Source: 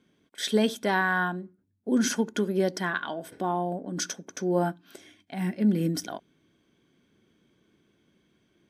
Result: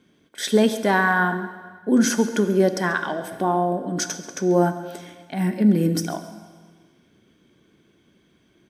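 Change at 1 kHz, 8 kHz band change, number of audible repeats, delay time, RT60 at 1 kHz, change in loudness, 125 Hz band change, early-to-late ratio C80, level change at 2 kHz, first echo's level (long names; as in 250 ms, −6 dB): +7.0 dB, +5.5 dB, 1, 138 ms, 1.5 s, +6.5 dB, +6.5 dB, 11.5 dB, +5.5 dB, −17.0 dB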